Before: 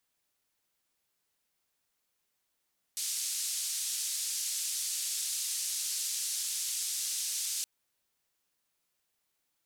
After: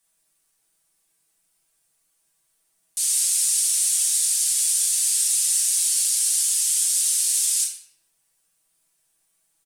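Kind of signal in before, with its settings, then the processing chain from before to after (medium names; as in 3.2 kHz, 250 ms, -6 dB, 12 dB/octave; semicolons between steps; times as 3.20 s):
noise band 5.1–8.9 kHz, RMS -34.5 dBFS 4.67 s
peaking EQ 9.1 kHz +14 dB 0.73 oct; comb 6.2 ms; simulated room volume 190 m³, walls mixed, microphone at 1.2 m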